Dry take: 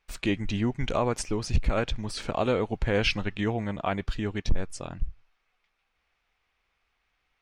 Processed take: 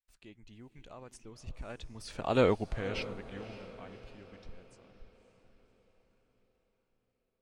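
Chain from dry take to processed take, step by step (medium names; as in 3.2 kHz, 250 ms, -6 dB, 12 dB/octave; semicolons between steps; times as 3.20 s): Doppler pass-by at 2.45 s, 15 m/s, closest 1.3 m; treble shelf 8.3 kHz +6 dB; on a send: echo that smears into a reverb 560 ms, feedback 49%, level -14 dB; on the sum: trim +1.5 dB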